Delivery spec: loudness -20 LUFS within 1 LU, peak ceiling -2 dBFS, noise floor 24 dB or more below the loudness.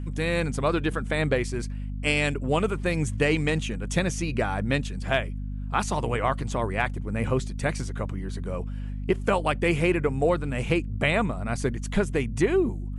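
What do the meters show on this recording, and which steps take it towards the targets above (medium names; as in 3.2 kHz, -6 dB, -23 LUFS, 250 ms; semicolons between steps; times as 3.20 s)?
hum 50 Hz; highest harmonic 250 Hz; hum level -29 dBFS; loudness -26.5 LUFS; peak level -9.5 dBFS; loudness target -20.0 LUFS
-> de-hum 50 Hz, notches 5; trim +6.5 dB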